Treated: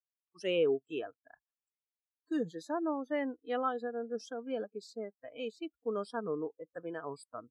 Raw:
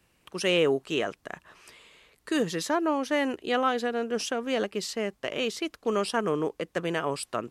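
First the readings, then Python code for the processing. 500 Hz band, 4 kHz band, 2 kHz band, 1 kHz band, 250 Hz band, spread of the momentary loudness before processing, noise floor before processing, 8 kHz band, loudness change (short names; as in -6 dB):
-7.0 dB, -15.0 dB, -13.5 dB, -9.5 dB, -8.0 dB, 7 LU, -69 dBFS, -20.0 dB, -8.5 dB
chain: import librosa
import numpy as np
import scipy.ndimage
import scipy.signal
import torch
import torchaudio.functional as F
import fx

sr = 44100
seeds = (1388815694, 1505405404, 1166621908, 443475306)

y = fx.noise_reduce_blind(x, sr, reduce_db=20)
y = fx.spectral_expand(y, sr, expansion=1.5)
y = y * librosa.db_to_amplitude(-7.0)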